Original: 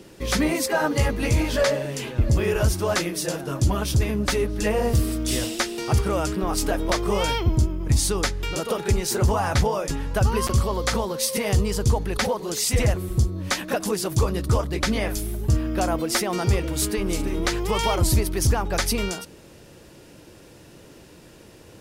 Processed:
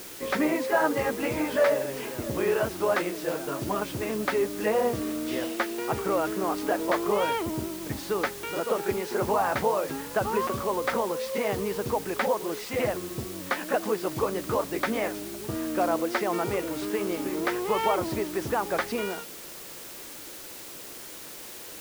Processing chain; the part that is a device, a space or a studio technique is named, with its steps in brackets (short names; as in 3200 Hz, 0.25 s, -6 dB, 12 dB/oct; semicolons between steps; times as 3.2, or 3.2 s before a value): wax cylinder (BPF 290–2000 Hz; wow and flutter; white noise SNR 14 dB)